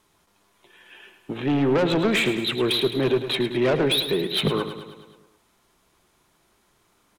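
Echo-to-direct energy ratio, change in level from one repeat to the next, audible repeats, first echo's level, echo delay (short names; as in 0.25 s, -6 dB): -8.5 dB, -4.5 dB, 6, -10.5 dB, 0.106 s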